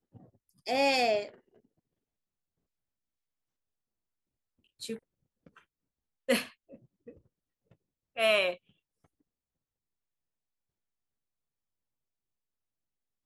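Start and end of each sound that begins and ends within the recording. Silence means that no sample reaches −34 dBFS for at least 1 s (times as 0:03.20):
0:04.83–0:04.94
0:06.29–0:06.43
0:08.18–0:08.53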